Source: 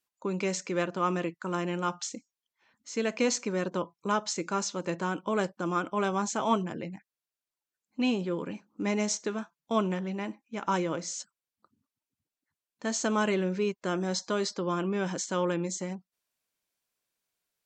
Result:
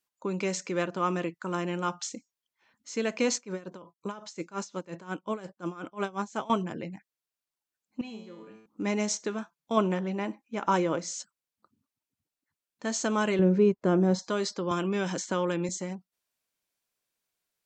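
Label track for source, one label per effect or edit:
3.350000	6.500000	tremolo with a sine in dB 5.6 Hz, depth 19 dB
8.010000	8.660000	tuned comb filter 110 Hz, decay 0.85 s, mix 90%
9.770000	10.990000	parametric band 590 Hz +4 dB 2.9 octaves
13.390000	14.190000	tilt shelving filter lows +9 dB, about 1,200 Hz
14.710000	15.690000	multiband upward and downward compressor depth 70%

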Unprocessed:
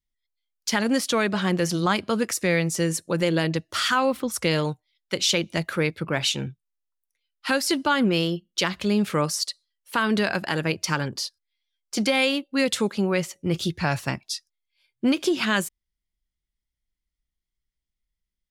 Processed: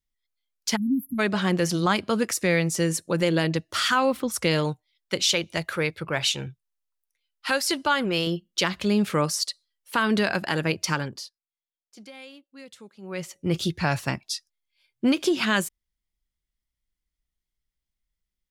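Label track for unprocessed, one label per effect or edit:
0.760000	1.190000	time-frequency box erased 290–11,000 Hz
5.220000	8.270000	parametric band 230 Hz −8 dB 1.1 octaves
10.890000	13.500000	duck −22.5 dB, fades 0.49 s

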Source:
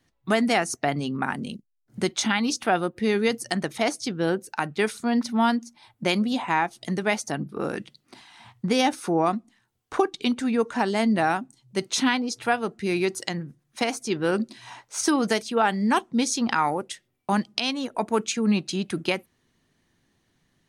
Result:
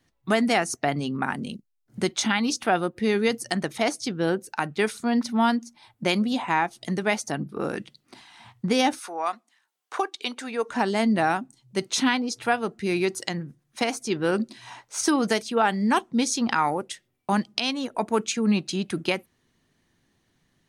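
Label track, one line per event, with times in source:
8.980000	10.680000	high-pass filter 1,000 Hz → 440 Hz

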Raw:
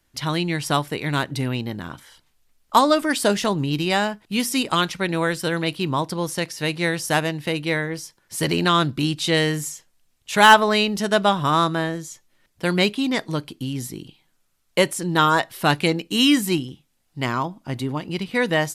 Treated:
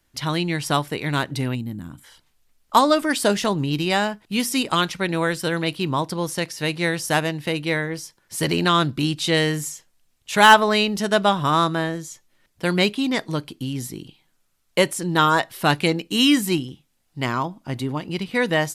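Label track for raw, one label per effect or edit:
1.550000	2.040000	gain on a spectral selection 330–6,800 Hz −13 dB

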